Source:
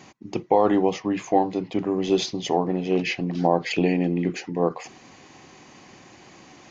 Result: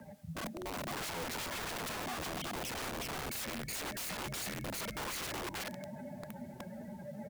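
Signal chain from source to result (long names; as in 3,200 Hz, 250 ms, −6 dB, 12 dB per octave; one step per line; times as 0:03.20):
expanding power law on the bin magnitudes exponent 3.6
hum removal 395.7 Hz, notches 5
compressor whose output falls as the input rises −28 dBFS, ratio −0.5
brickwall limiter −25.5 dBFS, peak gain reduction 11 dB
single-sideband voice off tune −140 Hz 340–2,700 Hz
bit-depth reduction 12 bits, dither triangular
frequency shifter +21 Hz
single-tap delay 339 ms −3.5 dB
convolution reverb, pre-delay 32 ms, DRR 15 dB
wrong playback speed 48 kHz file played as 44.1 kHz
wrap-around overflow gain 36.5 dB
level +1.5 dB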